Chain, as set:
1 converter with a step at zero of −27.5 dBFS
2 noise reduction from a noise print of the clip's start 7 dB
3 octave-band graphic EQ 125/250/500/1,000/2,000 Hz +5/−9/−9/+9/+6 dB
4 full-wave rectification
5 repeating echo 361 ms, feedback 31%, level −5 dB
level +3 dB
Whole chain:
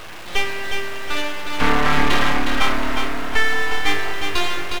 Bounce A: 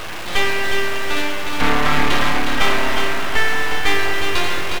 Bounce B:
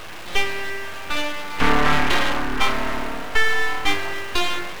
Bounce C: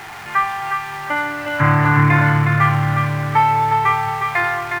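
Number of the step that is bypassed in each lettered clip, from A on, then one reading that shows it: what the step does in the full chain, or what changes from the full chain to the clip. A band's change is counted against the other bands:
2, 250 Hz band −2.0 dB
5, change in crest factor +3.0 dB
4, change in crest factor +1.5 dB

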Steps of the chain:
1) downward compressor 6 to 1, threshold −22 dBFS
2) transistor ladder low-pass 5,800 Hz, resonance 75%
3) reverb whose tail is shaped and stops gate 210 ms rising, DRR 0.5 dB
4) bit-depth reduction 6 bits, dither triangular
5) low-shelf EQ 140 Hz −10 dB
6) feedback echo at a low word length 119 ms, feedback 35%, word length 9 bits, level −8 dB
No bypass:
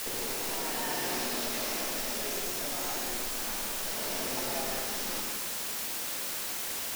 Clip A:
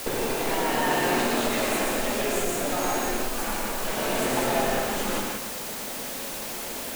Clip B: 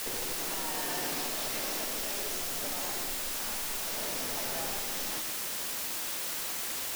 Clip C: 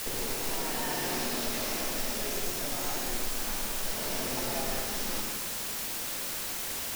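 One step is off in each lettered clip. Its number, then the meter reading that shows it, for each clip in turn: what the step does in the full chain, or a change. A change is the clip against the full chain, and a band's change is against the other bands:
2, 8 kHz band −9.0 dB
3, 250 Hz band −2.0 dB
5, 125 Hz band +5.5 dB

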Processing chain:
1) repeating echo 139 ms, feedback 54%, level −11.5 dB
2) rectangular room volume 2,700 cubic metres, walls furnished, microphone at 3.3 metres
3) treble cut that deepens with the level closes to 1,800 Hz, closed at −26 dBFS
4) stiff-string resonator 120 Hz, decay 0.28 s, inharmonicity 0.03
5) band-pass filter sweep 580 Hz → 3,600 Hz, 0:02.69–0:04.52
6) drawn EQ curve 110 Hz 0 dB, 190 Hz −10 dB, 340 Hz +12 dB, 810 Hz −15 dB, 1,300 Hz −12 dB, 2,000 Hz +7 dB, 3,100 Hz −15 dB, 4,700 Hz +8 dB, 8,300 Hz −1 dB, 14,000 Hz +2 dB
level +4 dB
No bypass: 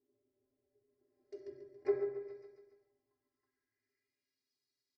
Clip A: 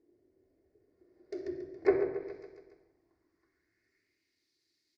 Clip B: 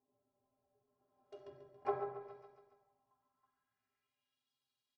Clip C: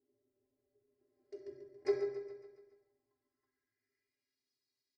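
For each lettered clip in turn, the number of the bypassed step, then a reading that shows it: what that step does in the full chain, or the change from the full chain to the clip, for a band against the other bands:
4, 500 Hz band −5.5 dB
6, 1 kHz band +17.0 dB
3, 2 kHz band +3.0 dB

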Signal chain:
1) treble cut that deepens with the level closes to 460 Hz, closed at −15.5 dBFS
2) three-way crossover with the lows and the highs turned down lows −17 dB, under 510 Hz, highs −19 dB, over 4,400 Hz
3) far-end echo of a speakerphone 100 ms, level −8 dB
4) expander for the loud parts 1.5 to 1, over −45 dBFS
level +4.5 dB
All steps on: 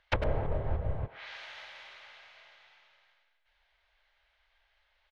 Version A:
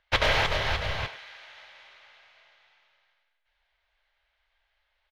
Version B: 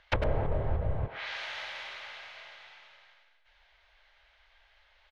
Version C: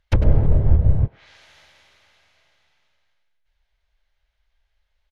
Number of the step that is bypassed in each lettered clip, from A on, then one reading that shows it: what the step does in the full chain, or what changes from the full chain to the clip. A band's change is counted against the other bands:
1, 4 kHz band +12.0 dB
4, 4 kHz band +3.5 dB
2, change in crest factor −5.5 dB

